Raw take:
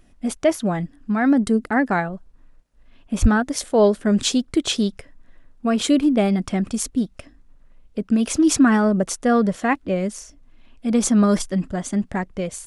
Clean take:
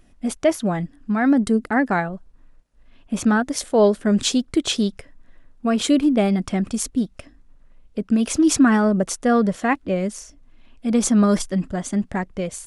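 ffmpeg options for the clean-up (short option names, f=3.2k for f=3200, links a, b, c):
-filter_complex "[0:a]asplit=3[a][b][c];[a]afade=t=out:st=3.21:d=0.02[d];[b]highpass=f=140:w=0.5412,highpass=f=140:w=1.3066,afade=t=in:st=3.21:d=0.02,afade=t=out:st=3.33:d=0.02[e];[c]afade=t=in:st=3.33:d=0.02[f];[d][e][f]amix=inputs=3:normalize=0"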